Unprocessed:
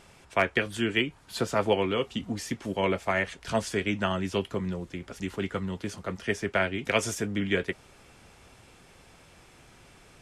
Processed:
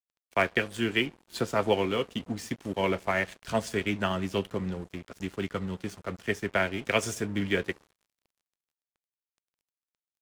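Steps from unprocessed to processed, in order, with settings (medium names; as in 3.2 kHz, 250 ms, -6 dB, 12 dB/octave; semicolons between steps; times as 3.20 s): filtered feedback delay 69 ms, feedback 79%, low-pass 1.1 kHz, level -20.5 dB; crossover distortion -44.5 dBFS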